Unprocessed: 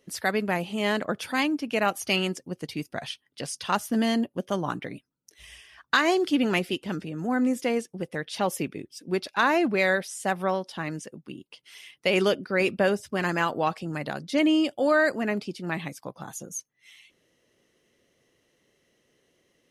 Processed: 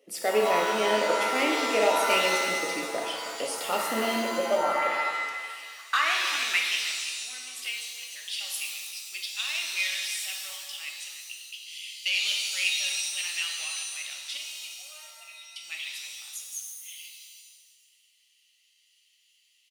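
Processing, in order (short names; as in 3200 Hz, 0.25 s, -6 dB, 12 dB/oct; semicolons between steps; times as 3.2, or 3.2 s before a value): thirty-one-band EQ 160 Hz -4 dB, 400 Hz -7 dB, 1000 Hz -9 dB, 1600 Hz -11 dB, 2500 Hz +3 dB, 4000 Hz -5 dB, 6300 Hz -5 dB; soft clip -21 dBFS, distortion -15 dB; high-pass sweep 440 Hz -> 3100 Hz, 4.13–7.51; 14.37–15.56 vowel filter a; on a send: echo 0.315 s -12 dB; on the sum: shimmer reverb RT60 1.4 s, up +7 st, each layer -2 dB, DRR 0.5 dB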